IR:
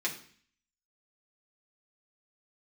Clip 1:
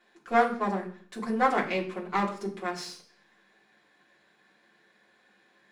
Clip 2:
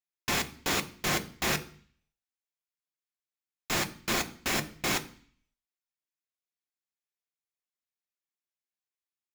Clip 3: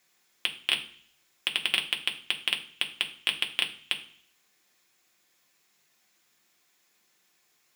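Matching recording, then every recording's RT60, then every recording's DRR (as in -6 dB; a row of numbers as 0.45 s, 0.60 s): 1; 0.50 s, 0.50 s, 0.50 s; -4.0 dB, 6.5 dB, 1.5 dB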